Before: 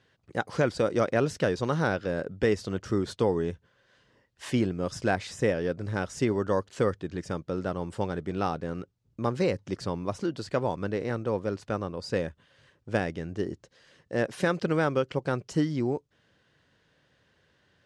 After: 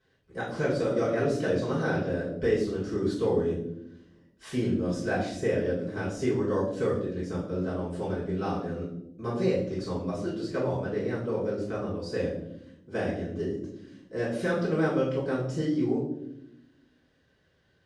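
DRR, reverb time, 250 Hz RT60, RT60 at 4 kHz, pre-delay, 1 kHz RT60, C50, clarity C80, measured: -10.0 dB, 0.80 s, 1.5 s, 0.55 s, 3 ms, 0.60 s, 4.5 dB, 7.5 dB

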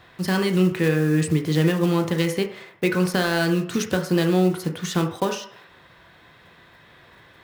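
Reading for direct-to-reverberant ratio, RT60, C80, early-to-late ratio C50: 4.0 dB, 0.60 s, 12.5 dB, 9.5 dB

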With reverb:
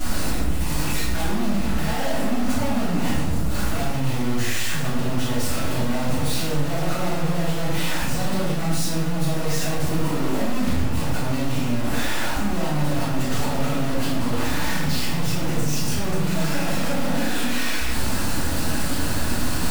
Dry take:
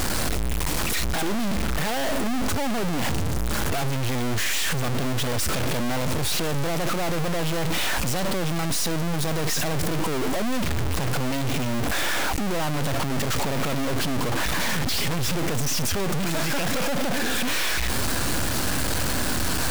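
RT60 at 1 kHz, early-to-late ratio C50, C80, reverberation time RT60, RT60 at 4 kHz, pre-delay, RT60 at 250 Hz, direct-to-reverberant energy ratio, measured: 1.0 s, 0.0 dB, 3.0 dB, 1.1 s, 0.65 s, 3 ms, 1.6 s, -15.0 dB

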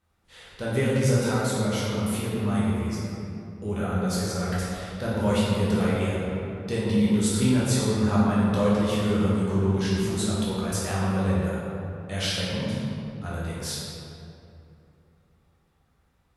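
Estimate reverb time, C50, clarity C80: 2.8 s, -2.5 dB, -0.5 dB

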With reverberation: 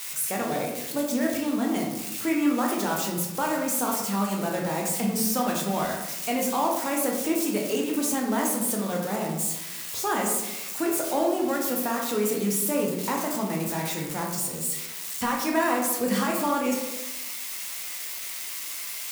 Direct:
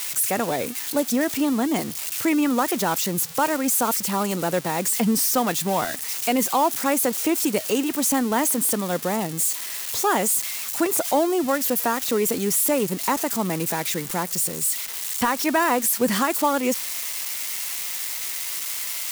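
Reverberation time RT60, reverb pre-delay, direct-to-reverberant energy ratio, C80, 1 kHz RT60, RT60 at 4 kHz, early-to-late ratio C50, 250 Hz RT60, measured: 1.0 s, 10 ms, -1.0 dB, 6.0 dB, 0.95 s, 0.60 s, 3.5 dB, 1.2 s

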